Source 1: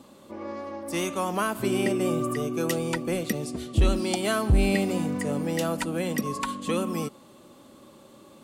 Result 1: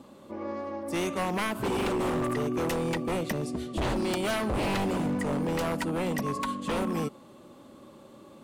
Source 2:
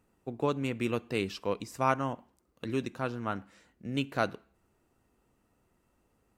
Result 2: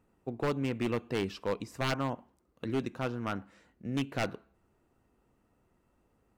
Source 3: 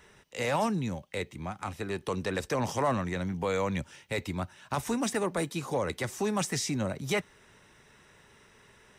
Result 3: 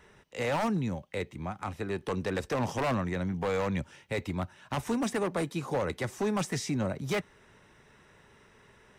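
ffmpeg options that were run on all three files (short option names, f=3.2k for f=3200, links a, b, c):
-af "highshelf=f=2.9k:g=-7.5,aeval=exprs='0.0631*(abs(mod(val(0)/0.0631+3,4)-2)-1)':c=same,volume=1dB"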